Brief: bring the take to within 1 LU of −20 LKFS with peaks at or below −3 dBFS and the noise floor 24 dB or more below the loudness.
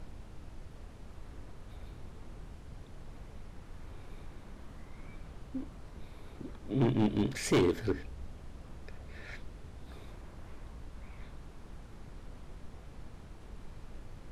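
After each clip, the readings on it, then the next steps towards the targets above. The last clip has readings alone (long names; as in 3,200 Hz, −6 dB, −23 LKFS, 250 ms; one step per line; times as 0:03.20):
share of clipped samples 0.5%; peaks flattened at −22.0 dBFS; background noise floor −51 dBFS; target noise floor −58 dBFS; integrated loudness −33.5 LKFS; sample peak −22.0 dBFS; target loudness −20.0 LKFS
→ clipped peaks rebuilt −22 dBFS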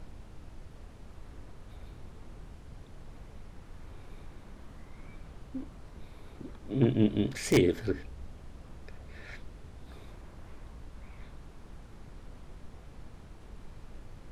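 share of clipped samples 0.0%; background noise floor −51 dBFS; target noise floor −54 dBFS
→ noise reduction from a noise print 6 dB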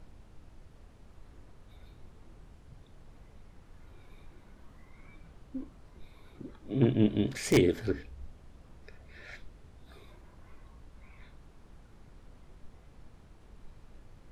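background noise floor −57 dBFS; integrated loudness −29.5 LKFS; sample peak −13.0 dBFS; target loudness −20.0 LKFS
→ level +9.5 dB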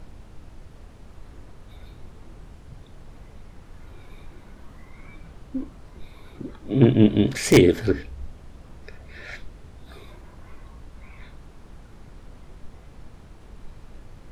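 integrated loudness −20.0 LKFS; sample peak −3.5 dBFS; background noise floor −47 dBFS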